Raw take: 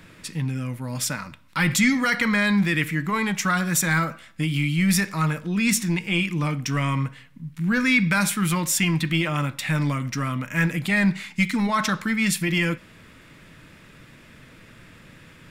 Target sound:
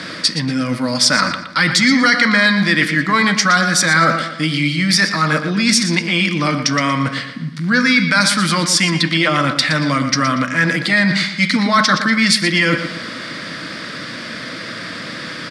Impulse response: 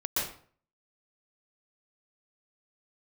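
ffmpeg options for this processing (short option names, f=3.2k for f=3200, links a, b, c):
-filter_complex "[0:a]areverse,acompressor=threshold=-33dB:ratio=5,areverse,highpass=280,equalizer=f=400:t=q:w=4:g=-9,equalizer=f=880:t=q:w=4:g=-9,equalizer=f=2.6k:t=q:w=4:g=-9,equalizer=f=4.7k:t=q:w=4:g=10,equalizer=f=7.2k:t=q:w=4:g=-9,lowpass=f=8.2k:w=0.5412,lowpass=f=8.2k:w=1.3066,asplit=2[a][b];[b]adelay=118,lowpass=f=5k:p=1,volume=-9dB,asplit=2[c][d];[d]adelay=118,lowpass=f=5k:p=1,volume=0.42,asplit=2[e][f];[f]adelay=118,lowpass=f=5k:p=1,volume=0.42,asplit=2[g][h];[h]adelay=118,lowpass=f=5k:p=1,volume=0.42,asplit=2[i][j];[j]adelay=118,lowpass=f=5k:p=1,volume=0.42[k];[a][c][e][g][i][k]amix=inputs=6:normalize=0,alimiter=level_in=25dB:limit=-1dB:release=50:level=0:latency=1,volume=-1dB"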